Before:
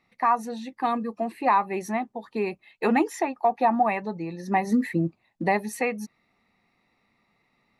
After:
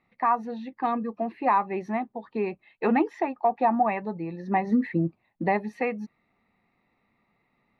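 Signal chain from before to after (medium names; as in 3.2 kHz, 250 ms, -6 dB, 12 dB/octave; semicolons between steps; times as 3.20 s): distance through air 300 m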